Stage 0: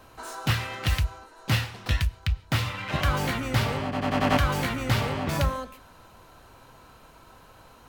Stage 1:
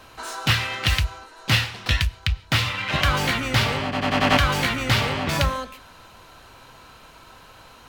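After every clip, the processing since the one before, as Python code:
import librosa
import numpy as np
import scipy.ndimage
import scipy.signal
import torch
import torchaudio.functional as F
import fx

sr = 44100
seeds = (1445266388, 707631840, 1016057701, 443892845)

y = fx.peak_eq(x, sr, hz=3300.0, db=7.5, octaves=2.5)
y = F.gain(torch.from_numpy(y), 2.0).numpy()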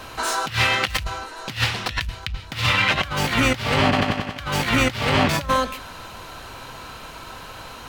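y = fx.over_compress(x, sr, threshold_db=-26.0, ratio=-0.5)
y = F.gain(torch.from_numpy(y), 5.0).numpy()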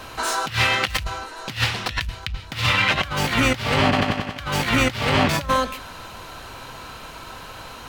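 y = x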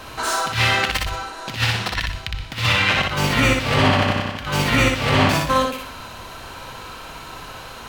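y = fx.echo_feedback(x, sr, ms=61, feedback_pct=36, wet_db=-3)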